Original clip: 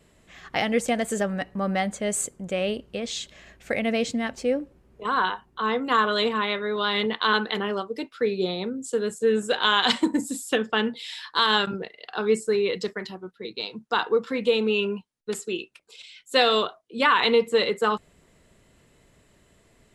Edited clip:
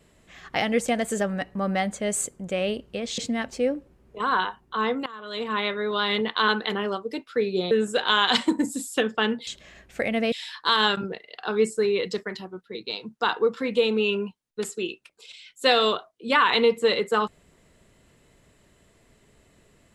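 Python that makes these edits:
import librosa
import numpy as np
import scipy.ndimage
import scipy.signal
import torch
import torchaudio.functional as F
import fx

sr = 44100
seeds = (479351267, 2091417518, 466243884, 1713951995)

y = fx.edit(x, sr, fx.move(start_s=3.18, length_s=0.85, to_s=11.02),
    fx.fade_in_from(start_s=5.91, length_s=0.53, curve='qua', floor_db=-22.5),
    fx.cut(start_s=8.56, length_s=0.7), tone=tone)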